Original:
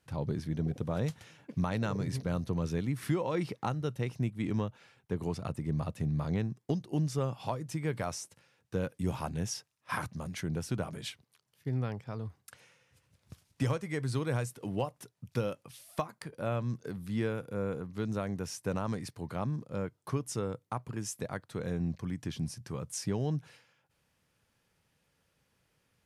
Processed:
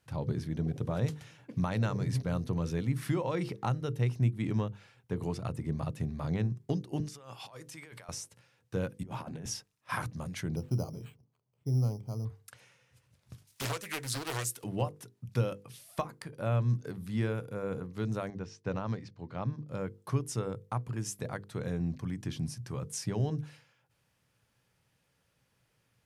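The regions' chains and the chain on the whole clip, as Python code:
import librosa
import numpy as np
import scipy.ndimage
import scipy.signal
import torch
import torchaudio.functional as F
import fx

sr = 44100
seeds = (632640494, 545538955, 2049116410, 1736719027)

y = fx.chain(x, sr, fx.highpass(hz=1200.0, slope=6),
    fx.over_compress(threshold_db=-49.0, ratio=-1.0), at=(7.0, 8.09))
y = fx.chain(y, sr, fx.highpass(hz=190.0, slope=12),
    fx.over_compress(threshold_db=-40.0, ratio=-0.5),
    fx.high_shelf(hz=3100.0, db=-10.5), at=(9.03, 9.46))
y = fx.chain(y, sr, fx.moving_average(points=26),
    fx.resample_bad(factor=8, down='none', up='hold'), at=(10.56, 12.25))
y = fx.chain(y, sr, fx.tilt_eq(slope=4.0),
    fx.doppler_dist(depth_ms=0.99), at=(13.47, 14.64))
y = fx.chain(y, sr, fx.lowpass(hz=5700.0, slope=24),
    fx.upward_expand(threshold_db=-54.0, expansion=1.5), at=(18.3, 19.68))
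y = fx.peak_eq(y, sr, hz=120.0, db=8.0, octaves=0.25)
y = fx.hum_notches(y, sr, base_hz=50, count=10)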